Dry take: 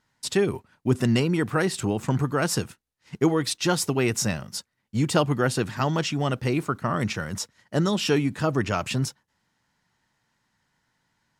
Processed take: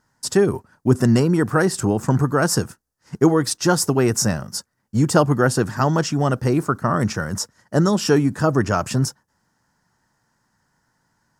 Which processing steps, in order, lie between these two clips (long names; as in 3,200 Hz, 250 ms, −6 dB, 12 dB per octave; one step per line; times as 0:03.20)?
flat-topped bell 2,900 Hz −11 dB 1.2 octaves
level +6 dB